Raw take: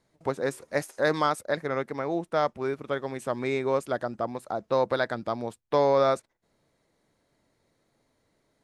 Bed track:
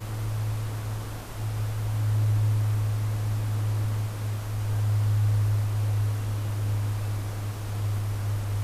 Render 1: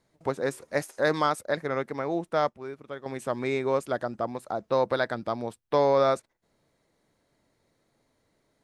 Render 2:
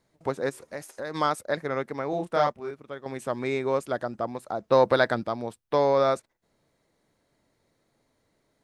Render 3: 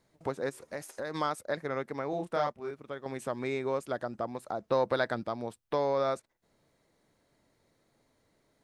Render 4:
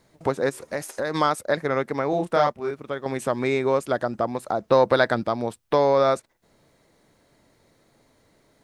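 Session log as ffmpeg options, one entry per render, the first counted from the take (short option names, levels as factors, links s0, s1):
-filter_complex "[0:a]asettb=1/sr,asplit=3[s0][s1][s2];[s0]atrim=end=4.694[s3];[s1]atrim=start=4.69:end=6.07,asetpts=PTS-STARTPTS,afade=t=in:d=0.004:c=qsin,afade=t=out:st=1.376:d=0.004:c=qsin,bandreject=f=6900:w=12[s4];[s2]atrim=start=6.066[s5];[s3][s4]acrossfade=d=0.004:c1=hsin:c2=qsin[s6];[s6][s5]acrossfade=d=0.004:c1=qsin:c2=hsin,asplit=3[s7][s8][s9];[s7]atrim=end=2.492[s10];[s8]atrim=start=2.488:end=3.062,asetpts=PTS-STARTPTS,volume=0.376[s11];[s9]atrim=start=3.058[s12];[s10][s11]acrossfade=d=0.004:c1=hsin:c2=hsin[s13];[s13][s12]acrossfade=d=0.004:c1=hsin:c2=hsin"
-filter_complex "[0:a]asplit=3[s0][s1][s2];[s0]afade=t=out:st=0.49:d=0.02[s3];[s1]acompressor=threshold=0.02:ratio=3:attack=3.2:release=140:knee=1:detection=peak,afade=t=in:st=0.49:d=0.02,afade=t=out:st=1.14:d=0.02[s4];[s2]afade=t=in:st=1.14:d=0.02[s5];[s3][s4][s5]amix=inputs=3:normalize=0,asettb=1/sr,asplit=3[s6][s7][s8];[s6]atrim=end=2.104[s9];[s7]atrim=start=2.1:end=2.71,asetpts=PTS-STARTPTS,afade=t=in:d=0.004:c=qsin,afade=t=out:st=0.606:d=0.004:c=qsin,asplit=2[s10][s11];[s11]adelay=28,volume=0.794[s12];[s10][s12]amix=inputs=2:normalize=0,atrim=end_sample=26901[s13];[s8]atrim=start=2.706[s14];[s9][s13]acrossfade=d=0.004:c1=hsin:c2=qsin[s15];[s15][s14]acrossfade=d=0.004:c1=qsin:c2=hsin,asplit=3[s16][s17][s18];[s16]afade=t=out:st=4.7:d=0.02[s19];[s17]acontrast=33,afade=t=in:st=4.7:d=0.02,afade=t=out:st=5.22:d=0.02[s20];[s18]afade=t=in:st=5.22:d=0.02[s21];[s19][s20][s21]amix=inputs=3:normalize=0"
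-af "acompressor=threshold=0.0126:ratio=1.5"
-af "volume=3.16"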